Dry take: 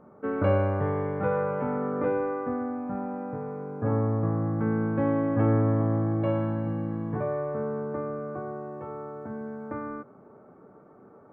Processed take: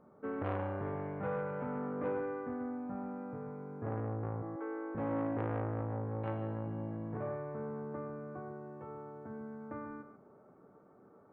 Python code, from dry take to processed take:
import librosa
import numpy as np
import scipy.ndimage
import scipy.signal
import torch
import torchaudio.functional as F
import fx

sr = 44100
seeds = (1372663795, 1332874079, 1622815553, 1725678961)

y = fx.ellip_highpass(x, sr, hz=320.0, order=4, stop_db=40, at=(4.42, 4.95))
y = y + 10.0 ** (-11.0 / 20.0) * np.pad(y, (int(137 * sr / 1000.0), 0))[:len(y)]
y = fx.transformer_sat(y, sr, knee_hz=740.0)
y = F.gain(torch.from_numpy(y), -8.5).numpy()